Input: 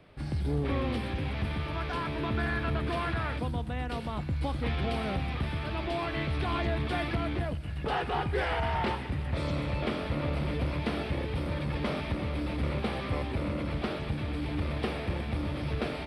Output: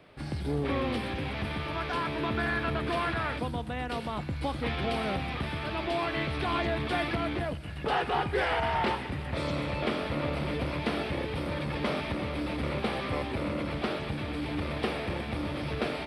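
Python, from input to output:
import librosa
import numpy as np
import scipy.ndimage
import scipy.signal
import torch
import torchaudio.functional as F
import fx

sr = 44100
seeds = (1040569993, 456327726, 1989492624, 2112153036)

y = fx.low_shelf(x, sr, hz=130.0, db=-10.5)
y = y * 10.0 ** (3.0 / 20.0)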